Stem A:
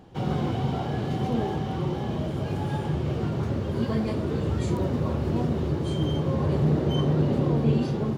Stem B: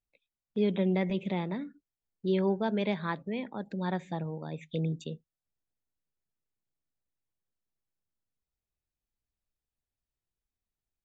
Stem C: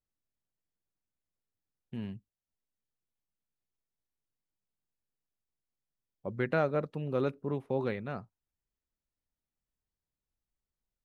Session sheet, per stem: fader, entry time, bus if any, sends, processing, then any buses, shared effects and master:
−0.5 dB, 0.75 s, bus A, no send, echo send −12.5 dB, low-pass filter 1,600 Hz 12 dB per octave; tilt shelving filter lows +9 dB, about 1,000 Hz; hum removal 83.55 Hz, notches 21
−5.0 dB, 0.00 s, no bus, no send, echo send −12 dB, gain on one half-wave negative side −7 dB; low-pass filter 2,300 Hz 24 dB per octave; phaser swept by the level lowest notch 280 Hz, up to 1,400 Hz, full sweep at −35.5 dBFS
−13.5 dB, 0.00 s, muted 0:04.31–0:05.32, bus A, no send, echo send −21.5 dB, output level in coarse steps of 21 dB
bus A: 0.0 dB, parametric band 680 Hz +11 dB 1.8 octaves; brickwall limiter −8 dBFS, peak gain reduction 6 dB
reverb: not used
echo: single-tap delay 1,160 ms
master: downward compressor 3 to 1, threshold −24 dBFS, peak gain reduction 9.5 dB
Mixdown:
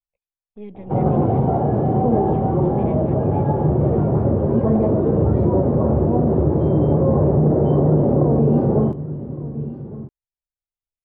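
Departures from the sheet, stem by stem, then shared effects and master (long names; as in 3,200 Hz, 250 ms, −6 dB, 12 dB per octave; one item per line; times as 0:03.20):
stem C: muted
master: missing downward compressor 3 to 1, threshold −24 dBFS, peak gain reduction 9.5 dB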